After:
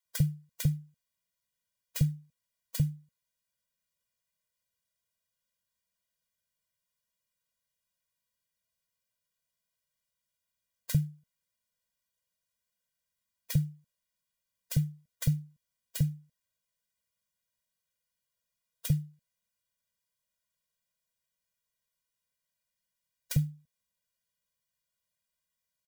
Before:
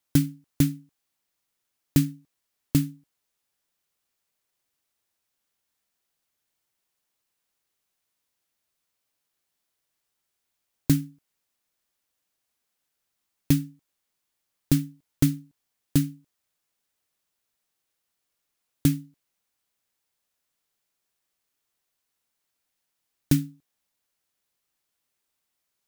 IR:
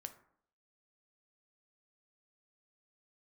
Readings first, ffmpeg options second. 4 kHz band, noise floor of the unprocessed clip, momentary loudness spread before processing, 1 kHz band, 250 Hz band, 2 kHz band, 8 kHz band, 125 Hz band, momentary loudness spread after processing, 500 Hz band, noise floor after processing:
-6.0 dB, -81 dBFS, 13 LU, n/a, -11.0 dB, -6.5 dB, -6.5 dB, -3.0 dB, 11 LU, -12.0 dB, under -85 dBFS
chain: -filter_complex "[0:a]acrossover=split=670[a][b];[a]adelay=50[c];[c][b]amix=inputs=2:normalize=0,afftfilt=real='re*eq(mod(floor(b*sr/1024/230),2),0)':imag='im*eq(mod(floor(b*sr/1024/230),2),0)':win_size=1024:overlap=0.75,volume=-3dB"

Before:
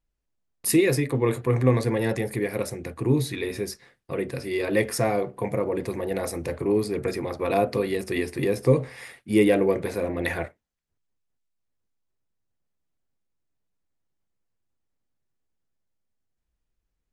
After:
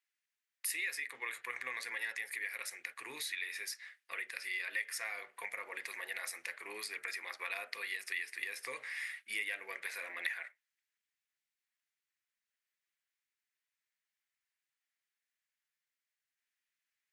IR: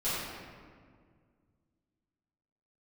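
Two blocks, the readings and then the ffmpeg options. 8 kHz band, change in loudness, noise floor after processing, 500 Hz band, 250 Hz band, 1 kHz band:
-9.0 dB, -14.5 dB, under -85 dBFS, -30.5 dB, -38.5 dB, -16.5 dB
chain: -af "highpass=f=1.9k:t=q:w=2.5,acompressor=threshold=-38dB:ratio=3,volume=-1dB"

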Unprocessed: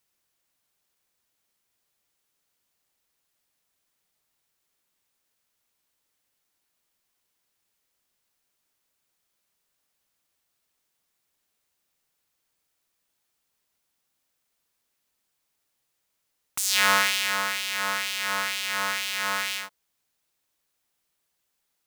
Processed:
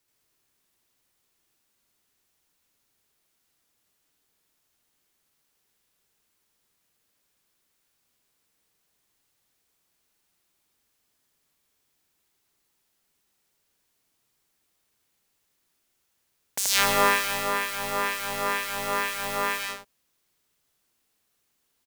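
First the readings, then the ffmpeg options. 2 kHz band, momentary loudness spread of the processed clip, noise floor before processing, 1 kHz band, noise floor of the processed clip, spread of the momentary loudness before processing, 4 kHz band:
-2.0 dB, 9 LU, -77 dBFS, +2.5 dB, -74 dBFS, 10 LU, -3.5 dB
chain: -af "afreqshift=-470,aecho=1:1:81.63|154.5:1|0.447"

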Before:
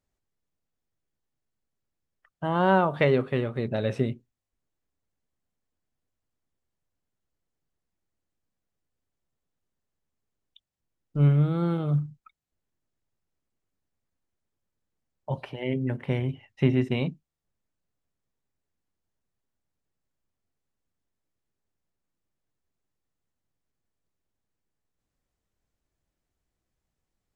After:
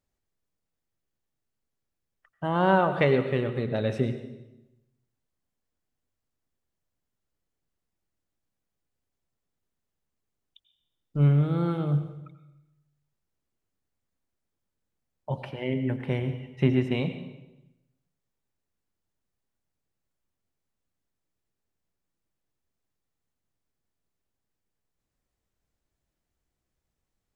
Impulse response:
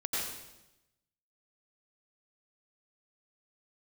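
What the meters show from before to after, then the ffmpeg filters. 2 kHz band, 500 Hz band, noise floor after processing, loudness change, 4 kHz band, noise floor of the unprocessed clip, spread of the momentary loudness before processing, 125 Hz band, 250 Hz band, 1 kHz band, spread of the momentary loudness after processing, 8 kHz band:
0.0 dB, 0.0 dB, -84 dBFS, 0.0 dB, 0.0 dB, -84 dBFS, 13 LU, -0.5 dB, 0.0 dB, 0.0 dB, 17 LU, n/a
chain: -filter_complex "[0:a]asplit=2[a][b];[1:a]atrim=start_sample=2205[c];[b][c]afir=irnorm=-1:irlink=0,volume=-12.5dB[d];[a][d]amix=inputs=2:normalize=0,volume=-2dB"

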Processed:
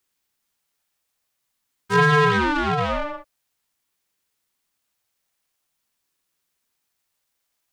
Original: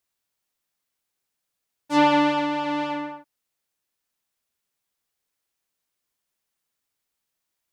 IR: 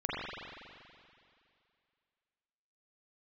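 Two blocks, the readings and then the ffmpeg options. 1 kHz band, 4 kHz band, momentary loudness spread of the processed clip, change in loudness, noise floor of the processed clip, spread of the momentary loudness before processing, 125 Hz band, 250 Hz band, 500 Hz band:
+1.5 dB, +1.5 dB, 14 LU, +3.0 dB, -77 dBFS, 13 LU, +17.0 dB, -3.0 dB, +4.0 dB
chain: -af "highpass=f=210:w=0.5412,highpass=f=210:w=1.3066,asoftclip=type=tanh:threshold=-14.5dB,aeval=exprs='val(0)*sin(2*PI*510*n/s+510*0.45/0.47*sin(2*PI*0.47*n/s))':c=same,volume=8dB"

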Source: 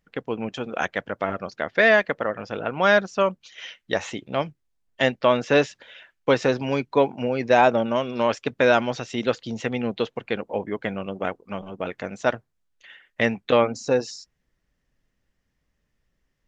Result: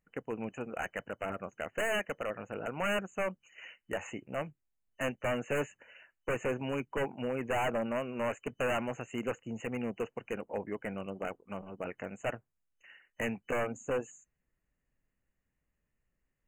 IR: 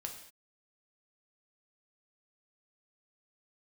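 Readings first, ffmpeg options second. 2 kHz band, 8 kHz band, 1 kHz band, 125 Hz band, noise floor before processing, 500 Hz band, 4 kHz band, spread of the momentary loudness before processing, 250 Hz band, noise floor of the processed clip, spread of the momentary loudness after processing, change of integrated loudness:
-13.0 dB, n/a, -13.5 dB, -10.0 dB, -75 dBFS, -13.0 dB, -13.5 dB, 13 LU, -11.0 dB, -84 dBFS, 9 LU, -13.0 dB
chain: -af "aeval=exprs='(tanh(2.82*val(0)+0.15)-tanh(0.15))/2.82':c=same,aeval=exprs='0.141*(abs(mod(val(0)/0.141+3,4)-2)-1)':c=same,afftfilt=real='re*(1-between(b*sr/4096,3000,6300))':imag='im*(1-between(b*sr/4096,3000,6300))':win_size=4096:overlap=0.75,volume=-8.5dB"

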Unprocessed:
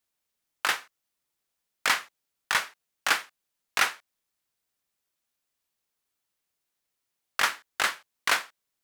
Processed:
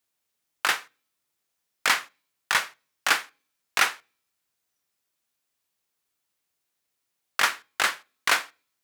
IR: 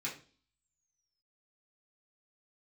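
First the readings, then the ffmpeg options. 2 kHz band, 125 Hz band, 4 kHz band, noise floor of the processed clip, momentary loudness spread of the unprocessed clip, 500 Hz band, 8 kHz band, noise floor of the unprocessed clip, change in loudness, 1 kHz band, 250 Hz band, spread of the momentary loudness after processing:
+2.5 dB, n/a, +2.5 dB, -80 dBFS, 7 LU, +2.0 dB, +2.5 dB, -83 dBFS, +2.5 dB, +2.0 dB, +2.0 dB, 7 LU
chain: -filter_complex "[0:a]highpass=51,asplit=2[a][b];[1:a]atrim=start_sample=2205[c];[b][c]afir=irnorm=-1:irlink=0,volume=-19.5dB[d];[a][d]amix=inputs=2:normalize=0,volume=2dB"

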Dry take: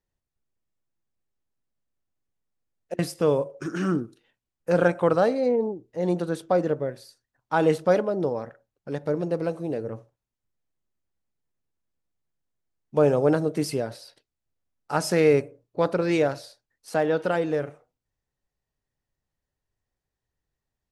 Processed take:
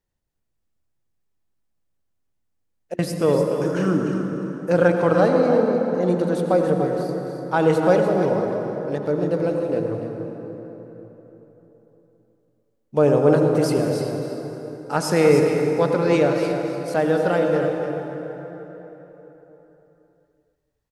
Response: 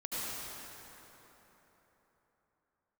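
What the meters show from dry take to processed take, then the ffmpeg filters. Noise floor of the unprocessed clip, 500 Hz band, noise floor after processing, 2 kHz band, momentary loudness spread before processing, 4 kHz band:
under -85 dBFS, +5.0 dB, -72 dBFS, +4.0 dB, 13 LU, +3.5 dB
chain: -filter_complex "[0:a]aecho=1:1:295:0.355,asplit=2[a][b];[1:a]atrim=start_sample=2205,lowshelf=f=460:g=5.5[c];[b][c]afir=irnorm=-1:irlink=0,volume=-7dB[d];[a][d]amix=inputs=2:normalize=0"

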